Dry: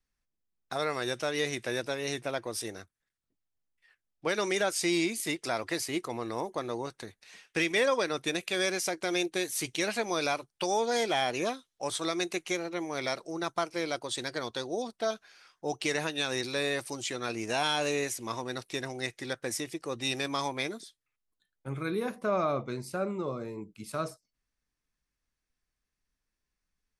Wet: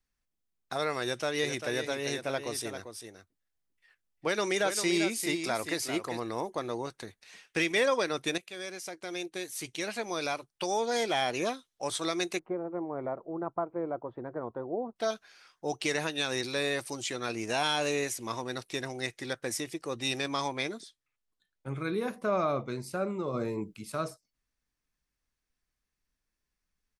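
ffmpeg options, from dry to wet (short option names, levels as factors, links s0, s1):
-filter_complex "[0:a]asplit=3[s0][s1][s2];[s0]afade=t=out:st=1.42:d=0.02[s3];[s1]aecho=1:1:396:0.376,afade=t=in:st=1.42:d=0.02,afade=t=out:st=6.18:d=0.02[s4];[s2]afade=t=in:st=6.18:d=0.02[s5];[s3][s4][s5]amix=inputs=3:normalize=0,asettb=1/sr,asplit=3[s6][s7][s8];[s6]atrim=end=12.394[s9];[s7]atrim=start=12.39:end=14.96,asetpts=PTS-STARTPTS,afade=t=in:d=0.004:c=qsin,afade=t=out:st=2.566:d=0.004:c=qsin,lowpass=f=1100:w=0.5412,lowpass=f=1100:w=1.3066[s10];[s8]atrim=start=14.956[s11];[s9][s10]acrossfade=d=0.004:c1=hsin:c2=qsin[s12];[s12][s11]acrossfade=d=0.004:c1=qsin:c2=hsin,asettb=1/sr,asplit=3[s13][s14][s15];[s13]atrim=end=20.174[s16];[s14]atrim=start=20.17:end=22.03,asetpts=PTS-STARTPTS,afade=t=in:d=0.004:c=qsin,afade=t=out:st=1.856:d=0.004:c=qsin,lowpass=9000[s17];[s15]atrim=start=22.026[s18];[s16][s17]acrossfade=d=0.004:c1=hsin:c2=qsin[s19];[s19][s18]acrossfade=d=0.004:c1=qsin:c2=hsin,asplit=3[s20][s21][s22];[s20]afade=t=out:st=23.33:d=0.02[s23];[s21]acontrast=47,afade=t=in:st=23.33:d=0.02,afade=t=out:st=23.78:d=0.02[s24];[s22]afade=t=in:st=23.78:d=0.02[s25];[s23][s24][s25]amix=inputs=3:normalize=0,asplit=2[s26][s27];[s26]atrim=end=8.38,asetpts=PTS-STARTPTS,afade=t=out:st=8.376:d=0.004:c=hsin:silence=0.223872[s28];[s27]atrim=start=8.38,asetpts=PTS-STARTPTS,afade=t=in:d=2.99:silence=0.223872[s29];[s28][s29]concat=n=2:v=0:a=1"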